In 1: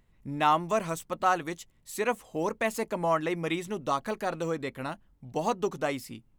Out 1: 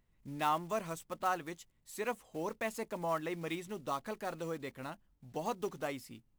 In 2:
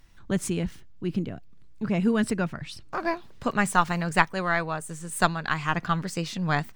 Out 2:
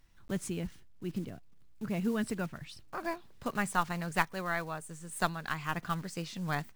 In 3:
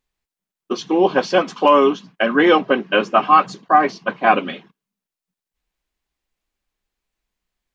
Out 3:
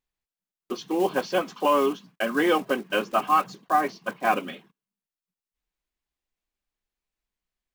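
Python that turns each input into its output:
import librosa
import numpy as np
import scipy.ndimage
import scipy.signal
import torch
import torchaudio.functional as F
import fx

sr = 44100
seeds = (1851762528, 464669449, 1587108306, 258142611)

y = fx.block_float(x, sr, bits=5)
y = F.gain(torch.from_numpy(y), -8.5).numpy()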